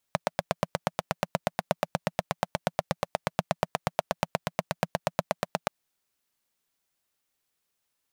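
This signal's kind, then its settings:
pulse-train model of a single-cylinder engine, steady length 5.53 s, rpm 1,000, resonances 170/620 Hz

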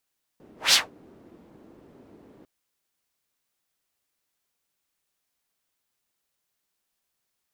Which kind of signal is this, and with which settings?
pass-by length 2.05 s, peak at 0:00.33, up 0.17 s, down 0.18 s, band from 310 Hz, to 4,600 Hz, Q 1.7, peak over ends 36 dB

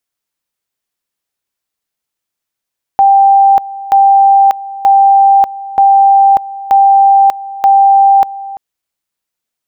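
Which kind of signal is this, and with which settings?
tone at two levels in turn 788 Hz −3 dBFS, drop 18 dB, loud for 0.59 s, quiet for 0.34 s, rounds 6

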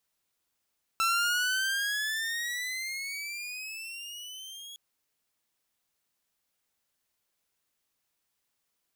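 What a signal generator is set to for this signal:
pitch glide with a swell saw, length 3.76 s, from 1,330 Hz, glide +16 semitones, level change −18.5 dB, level −21 dB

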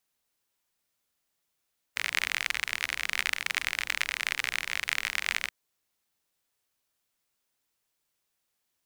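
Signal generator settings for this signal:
rain-like ticks over hiss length 3.53 s, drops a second 46, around 2,100 Hz, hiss −21.5 dB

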